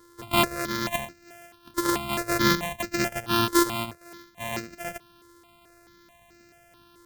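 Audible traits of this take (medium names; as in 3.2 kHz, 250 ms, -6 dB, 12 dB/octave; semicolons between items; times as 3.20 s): a buzz of ramps at a fixed pitch in blocks of 128 samples; notches that jump at a steady rate 4.6 Hz 700–3300 Hz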